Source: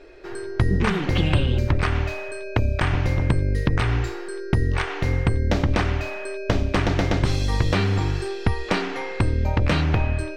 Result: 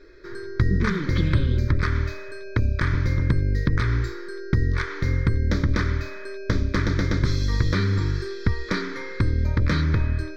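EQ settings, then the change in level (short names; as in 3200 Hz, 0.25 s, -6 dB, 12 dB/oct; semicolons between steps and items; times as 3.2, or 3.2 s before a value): fixed phaser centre 2800 Hz, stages 6; 0.0 dB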